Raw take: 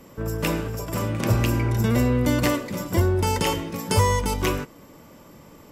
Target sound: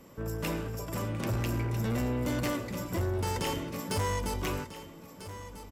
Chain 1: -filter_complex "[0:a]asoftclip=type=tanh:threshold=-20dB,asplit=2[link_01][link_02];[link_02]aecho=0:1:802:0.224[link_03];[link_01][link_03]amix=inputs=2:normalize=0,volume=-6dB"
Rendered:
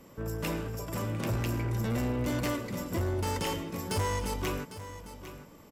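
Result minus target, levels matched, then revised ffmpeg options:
echo 493 ms early
-filter_complex "[0:a]asoftclip=type=tanh:threshold=-20dB,asplit=2[link_01][link_02];[link_02]aecho=0:1:1295:0.224[link_03];[link_01][link_03]amix=inputs=2:normalize=0,volume=-6dB"

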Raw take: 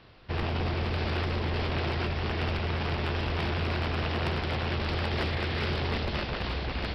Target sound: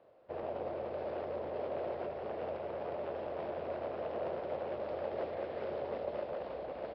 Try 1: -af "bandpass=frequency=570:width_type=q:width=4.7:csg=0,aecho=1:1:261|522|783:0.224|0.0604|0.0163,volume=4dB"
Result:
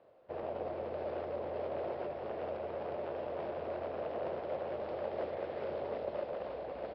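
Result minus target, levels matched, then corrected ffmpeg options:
echo 86 ms late
-af "bandpass=frequency=570:width_type=q:width=4.7:csg=0,aecho=1:1:175|350|525:0.224|0.0604|0.0163,volume=4dB"

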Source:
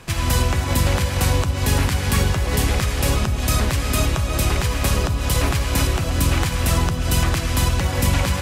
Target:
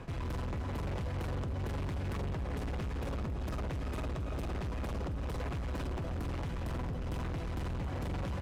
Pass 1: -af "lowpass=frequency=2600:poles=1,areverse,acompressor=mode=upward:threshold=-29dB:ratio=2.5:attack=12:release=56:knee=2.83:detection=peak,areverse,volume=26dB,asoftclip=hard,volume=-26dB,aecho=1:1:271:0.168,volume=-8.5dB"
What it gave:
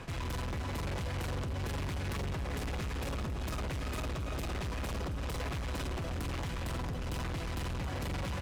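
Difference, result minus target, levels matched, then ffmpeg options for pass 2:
2,000 Hz band +4.0 dB
-af "lowpass=frequency=810:poles=1,areverse,acompressor=mode=upward:threshold=-29dB:ratio=2.5:attack=12:release=56:knee=2.83:detection=peak,areverse,volume=26dB,asoftclip=hard,volume=-26dB,aecho=1:1:271:0.168,volume=-8.5dB"

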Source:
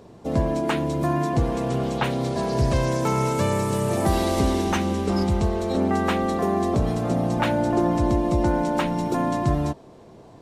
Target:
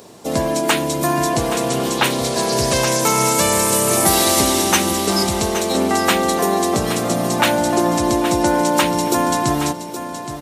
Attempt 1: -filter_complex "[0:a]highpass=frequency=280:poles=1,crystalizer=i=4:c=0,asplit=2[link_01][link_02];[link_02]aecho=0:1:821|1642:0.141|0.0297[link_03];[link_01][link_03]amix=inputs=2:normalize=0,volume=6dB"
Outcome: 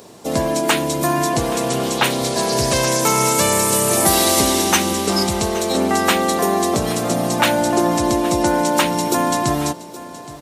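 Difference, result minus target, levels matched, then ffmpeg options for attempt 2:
echo-to-direct −6.5 dB
-filter_complex "[0:a]highpass=frequency=280:poles=1,crystalizer=i=4:c=0,asplit=2[link_01][link_02];[link_02]aecho=0:1:821|1642|2463:0.299|0.0627|0.0132[link_03];[link_01][link_03]amix=inputs=2:normalize=0,volume=6dB"

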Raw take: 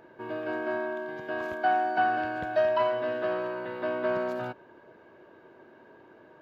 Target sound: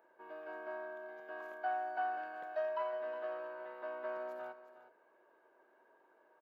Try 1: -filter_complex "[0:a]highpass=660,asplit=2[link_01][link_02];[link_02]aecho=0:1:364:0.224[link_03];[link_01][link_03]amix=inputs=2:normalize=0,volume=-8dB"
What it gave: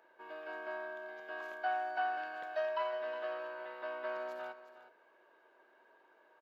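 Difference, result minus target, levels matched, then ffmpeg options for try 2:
4,000 Hz band +8.0 dB
-filter_complex "[0:a]highpass=660,equalizer=frequency=4100:width=0.51:gain=-11,asplit=2[link_01][link_02];[link_02]aecho=0:1:364:0.224[link_03];[link_01][link_03]amix=inputs=2:normalize=0,volume=-8dB"

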